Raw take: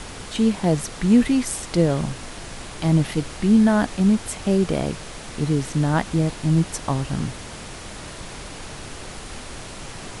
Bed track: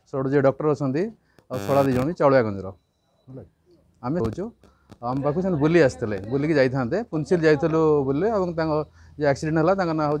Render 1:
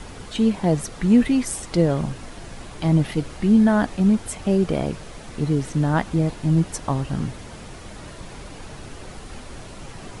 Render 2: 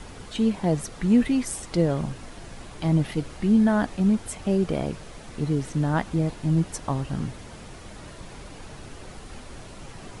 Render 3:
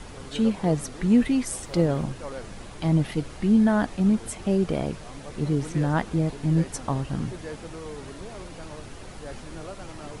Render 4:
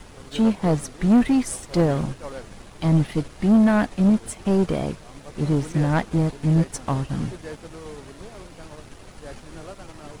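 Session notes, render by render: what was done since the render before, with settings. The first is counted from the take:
broadband denoise 7 dB, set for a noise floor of −37 dBFS
level −3.5 dB
mix in bed track −20 dB
leveller curve on the samples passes 2; expander for the loud parts 1.5 to 1, over −33 dBFS

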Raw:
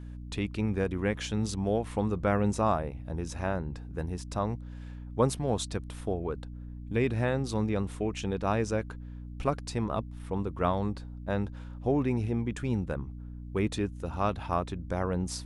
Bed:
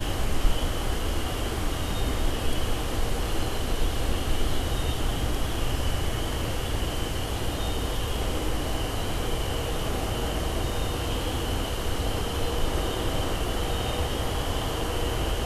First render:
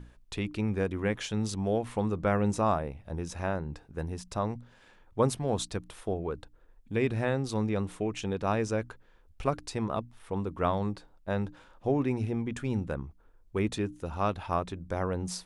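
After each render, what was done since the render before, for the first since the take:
mains-hum notches 60/120/180/240/300 Hz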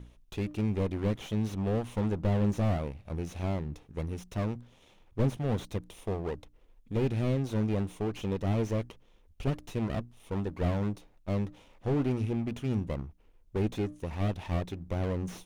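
lower of the sound and its delayed copy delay 0.32 ms
slew-rate limiting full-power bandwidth 23 Hz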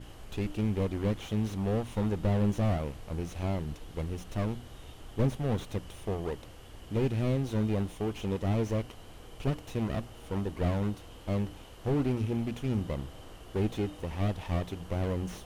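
mix in bed −21 dB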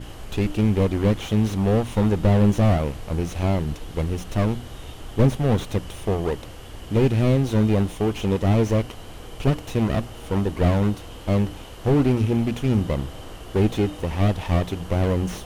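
level +10 dB

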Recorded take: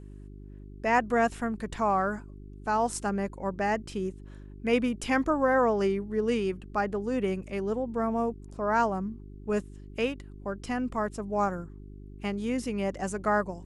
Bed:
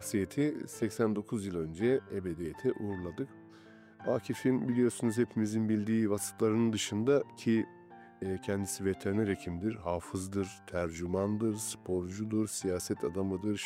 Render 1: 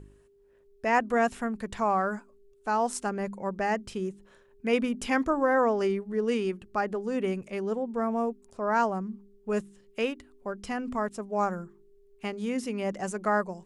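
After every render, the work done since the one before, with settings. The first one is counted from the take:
hum removal 50 Hz, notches 7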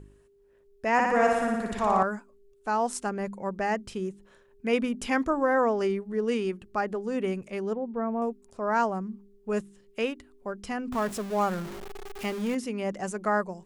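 0:00.93–0:02.03: flutter between parallel walls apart 10 metres, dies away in 1.2 s
0:07.73–0:08.22: high-frequency loss of the air 440 metres
0:10.92–0:12.55: converter with a step at zero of −34 dBFS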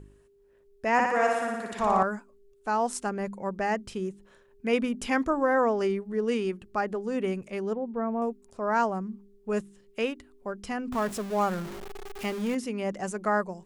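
0:01.06–0:01.79: high-pass filter 460 Hz 6 dB per octave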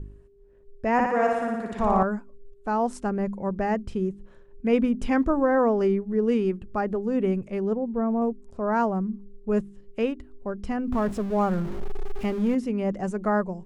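spectral tilt −3 dB per octave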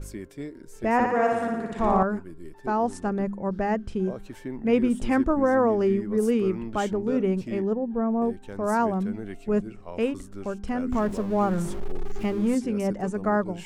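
mix in bed −6 dB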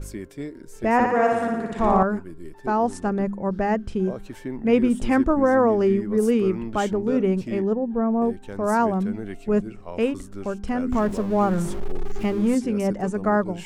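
level +3 dB

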